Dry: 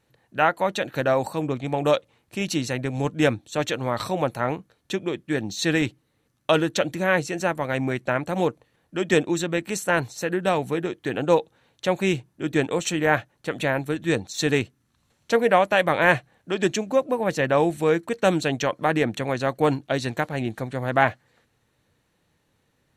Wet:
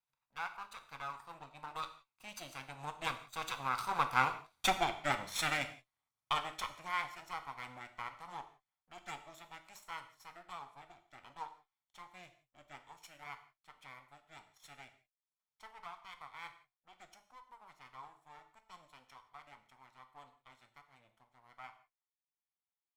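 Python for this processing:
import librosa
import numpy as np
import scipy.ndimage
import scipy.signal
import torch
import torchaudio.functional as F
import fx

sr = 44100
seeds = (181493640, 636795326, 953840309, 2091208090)

y = fx.lower_of_two(x, sr, delay_ms=0.86)
y = fx.doppler_pass(y, sr, speed_mps=19, closest_m=5.0, pass_at_s=4.66)
y = fx.transient(y, sr, attack_db=0, sustain_db=-7)
y = fx.low_shelf_res(y, sr, hz=520.0, db=-12.0, q=1.5)
y = fx.rev_gated(y, sr, seeds[0], gate_ms=200, shape='falling', drr_db=7.0)
y = F.gain(torch.from_numpy(y), 2.5).numpy()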